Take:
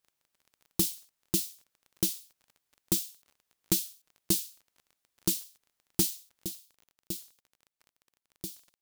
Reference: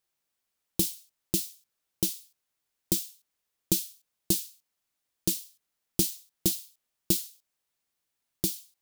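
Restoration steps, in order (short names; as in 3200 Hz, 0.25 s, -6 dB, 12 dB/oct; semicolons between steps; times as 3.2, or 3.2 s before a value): clip repair -16.5 dBFS; de-click; gain 0 dB, from 6.45 s +11 dB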